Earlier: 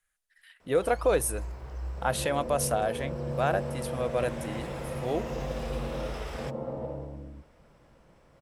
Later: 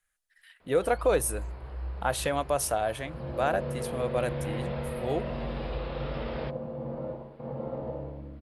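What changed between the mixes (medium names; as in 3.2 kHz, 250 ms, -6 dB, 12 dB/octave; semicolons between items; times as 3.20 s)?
first sound: add steep low-pass 4.7 kHz 72 dB/octave; second sound: entry +1.05 s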